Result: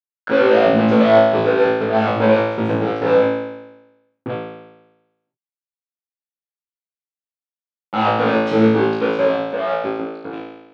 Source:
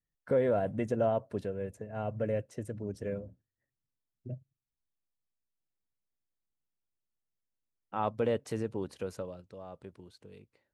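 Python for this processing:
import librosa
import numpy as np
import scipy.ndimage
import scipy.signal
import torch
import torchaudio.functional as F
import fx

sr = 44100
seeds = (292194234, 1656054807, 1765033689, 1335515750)

y = fx.fuzz(x, sr, gain_db=45.0, gate_db=-50.0)
y = fx.cabinet(y, sr, low_hz=270.0, low_slope=12, high_hz=3000.0, hz=(270.0, 400.0, 690.0, 1100.0, 1900.0, 2800.0), db=(3, -6, -5, -5, -9, -6))
y = fx.room_flutter(y, sr, wall_m=3.1, rt60_s=1.0)
y = F.gain(torch.from_numpy(y), -1.0).numpy()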